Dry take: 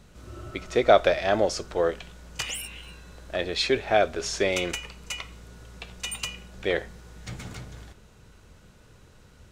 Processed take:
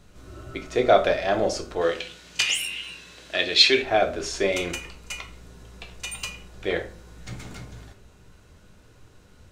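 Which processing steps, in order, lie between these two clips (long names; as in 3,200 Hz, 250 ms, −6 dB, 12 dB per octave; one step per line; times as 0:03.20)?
0:01.81–0:03.82: meter weighting curve D
on a send: convolution reverb RT60 0.45 s, pre-delay 3 ms, DRR 4 dB
on the sum: level −1.5 dB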